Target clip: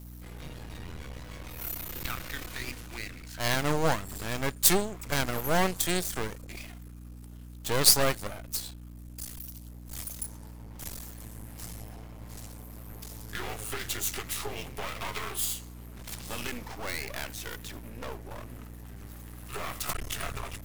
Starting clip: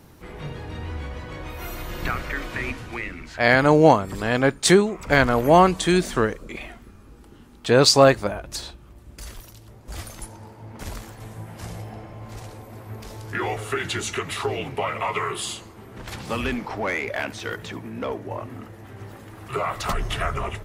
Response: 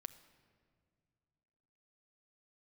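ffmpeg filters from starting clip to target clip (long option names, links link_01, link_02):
-af "aeval=exprs='max(val(0),0)':channel_layout=same,aeval=exprs='val(0)+0.0158*(sin(2*PI*60*n/s)+sin(2*PI*2*60*n/s)/2+sin(2*PI*3*60*n/s)/3+sin(2*PI*4*60*n/s)/4+sin(2*PI*5*60*n/s)/5)':channel_layout=same,aemphasis=mode=production:type=75fm,volume=-7dB"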